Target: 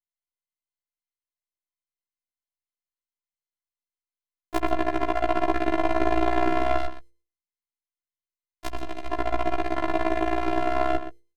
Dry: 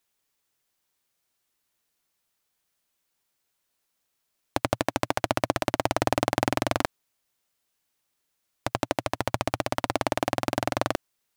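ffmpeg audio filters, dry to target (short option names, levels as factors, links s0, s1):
-filter_complex "[0:a]aemphasis=mode=reproduction:type=bsi,acrossover=split=3100[s0][s1];[s1]acompressor=threshold=0.00251:ratio=4:attack=1:release=60[s2];[s0][s2]amix=inputs=2:normalize=0,agate=range=0.0501:threshold=0.002:ratio=16:detection=peak,highshelf=f=5500:g=8.5,bandreject=f=60:t=h:w=6,bandreject=f=120:t=h:w=6,bandreject=f=180:t=h:w=6,bandreject=f=240:t=h:w=6,bandreject=f=300:t=h:w=6,bandreject=f=360:t=h:w=6,bandreject=f=420:t=h:w=6,bandreject=f=480:t=h:w=6,bandreject=f=540:t=h:w=6,asettb=1/sr,asplit=3[s3][s4][s5];[s3]atrim=end=6.784[s6];[s4]atrim=start=6.78:end=9.11,asetpts=PTS-STARTPTS,afade=t=in:d=0.004:c=qsin,afade=t=out:st=2.326:d=0.004:c=qsin,acrossover=split=140|3000[s7][s8][s9];[s8]acompressor=threshold=0.0251:ratio=6[s10];[s7][s10][s9]amix=inputs=3:normalize=0[s11];[s5]atrim=start=9.106[s12];[s6][s11]acrossfade=d=0.004:c1=hsin:c2=qsin[s13];[s13][s12]acrossfade=d=0.004:c1=qsin:c2=hsin,afftfilt=real='hypot(re,im)*cos(PI*b)':imag='0':win_size=512:overlap=0.75,asplit=2[s14][s15];[s15]adelay=122.4,volume=0.282,highshelf=f=4000:g=-2.76[s16];[s14][s16]amix=inputs=2:normalize=0,afftfilt=real='re*1.73*eq(mod(b,3),0)':imag='im*1.73*eq(mod(b,3),0)':win_size=2048:overlap=0.75,volume=2.24"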